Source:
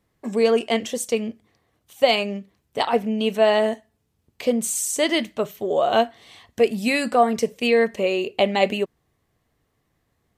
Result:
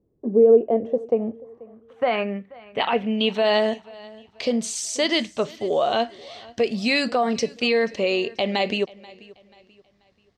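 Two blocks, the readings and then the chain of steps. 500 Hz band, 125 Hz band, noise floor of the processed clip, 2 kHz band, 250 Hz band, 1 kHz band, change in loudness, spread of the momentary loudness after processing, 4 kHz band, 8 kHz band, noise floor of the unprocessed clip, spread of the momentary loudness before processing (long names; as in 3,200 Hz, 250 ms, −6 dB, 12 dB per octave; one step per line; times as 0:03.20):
−0.5 dB, −0.5 dB, −63 dBFS, −0.5 dB, −0.5 dB, −3.0 dB, −0.5 dB, 13 LU, +1.0 dB, −4.5 dB, −72 dBFS, 9 LU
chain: brickwall limiter −12.5 dBFS, peak gain reduction 8 dB
low-pass filter sweep 410 Hz → 4,900 Hz, 0:00.36–0:03.63
on a send: repeating echo 485 ms, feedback 36%, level −22 dB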